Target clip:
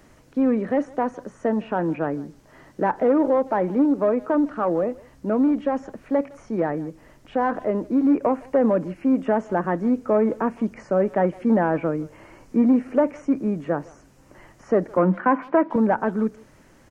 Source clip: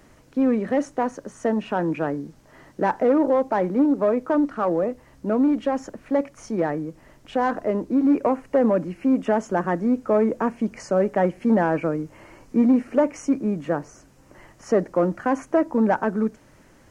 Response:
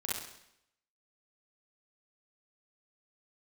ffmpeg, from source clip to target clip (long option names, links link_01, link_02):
-filter_complex "[0:a]acrossover=split=2500[link_01][link_02];[link_02]acompressor=threshold=-57dB:ratio=4:attack=1:release=60[link_03];[link_01][link_03]amix=inputs=2:normalize=0,asettb=1/sr,asplit=3[link_04][link_05][link_06];[link_04]atrim=end=14.974[link_07];[link_05]atrim=start=14.97:end=15.76,asetpts=PTS-STARTPTS,afade=type=in:duration=0.004:curve=qsin,afade=type=out:start_time=0.786:duration=0.004:curve=qsin,highpass=frequency=180:width=0.5412,highpass=frequency=180:width=1.3066,equalizer=frequency=190:width_type=q:width=4:gain=10,equalizer=frequency=1000:width_type=q:width=4:gain=8,equalizer=frequency=1500:width_type=q:width=4:gain=5,equalizer=frequency=2300:width_type=q:width=4:gain=6,lowpass=frequency=3400:width=0.5412,lowpass=frequency=3400:width=1.3066[link_08];[link_06]atrim=start=15.756[link_09];[link_07][link_08]acrossfade=duration=0.004:curve1=hsin:curve2=qsin[link_10];[link_10][link_09]acrossfade=duration=0.004:curve1=qsin:curve2=hsin,asplit=2[link_11][link_12];[link_12]adelay=160,highpass=300,lowpass=3400,asoftclip=type=hard:threshold=-17dB,volume=-22dB[link_13];[link_11][link_13]amix=inputs=2:normalize=0"